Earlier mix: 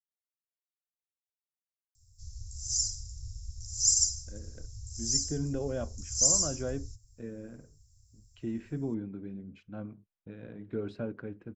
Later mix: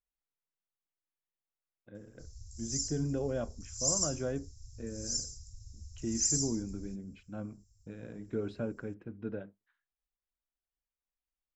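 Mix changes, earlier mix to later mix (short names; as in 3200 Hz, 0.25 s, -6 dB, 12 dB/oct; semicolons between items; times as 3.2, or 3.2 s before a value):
speech: entry -2.40 s; background -6.0 dB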